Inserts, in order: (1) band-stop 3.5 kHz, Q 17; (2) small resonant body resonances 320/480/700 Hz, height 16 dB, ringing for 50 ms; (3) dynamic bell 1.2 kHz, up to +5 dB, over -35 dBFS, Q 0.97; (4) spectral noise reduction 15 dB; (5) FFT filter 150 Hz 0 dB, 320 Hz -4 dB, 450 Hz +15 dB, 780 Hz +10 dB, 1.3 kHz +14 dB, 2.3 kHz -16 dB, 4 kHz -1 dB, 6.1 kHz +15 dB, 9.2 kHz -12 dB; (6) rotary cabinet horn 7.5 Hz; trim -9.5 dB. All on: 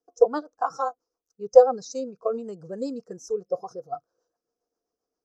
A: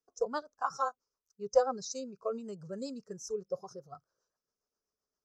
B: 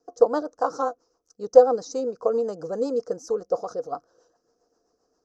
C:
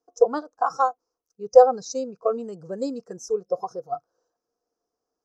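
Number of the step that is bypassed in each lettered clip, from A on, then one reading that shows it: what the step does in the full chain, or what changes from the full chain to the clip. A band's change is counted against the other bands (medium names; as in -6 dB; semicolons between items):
2, 125 Hz band +5.0 dB; 4, momentary loudness spread change -5 LU; 6, momentary loudness spread change -1 LU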